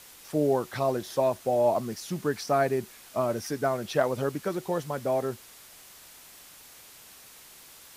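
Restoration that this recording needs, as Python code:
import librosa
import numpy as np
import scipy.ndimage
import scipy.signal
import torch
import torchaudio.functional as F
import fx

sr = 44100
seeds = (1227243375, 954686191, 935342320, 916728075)

y = fx.noise_reduce(x, sr, print_start_s=7.15, print_end_s=7.65, reduce_db=22.0)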